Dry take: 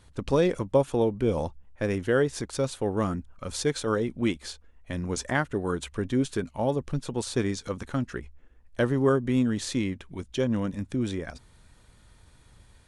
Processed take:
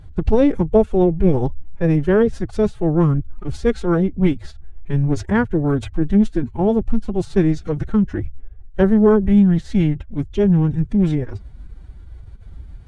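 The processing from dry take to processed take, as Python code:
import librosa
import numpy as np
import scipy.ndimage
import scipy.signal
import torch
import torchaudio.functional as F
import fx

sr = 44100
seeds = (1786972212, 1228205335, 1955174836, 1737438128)

y = fx.riaa(x, sr, side='playback')
y = fx.pitch_keep_formants(y, sr, semitones=8.0)
y = y * 10.0 ** (4.0 / 20.0)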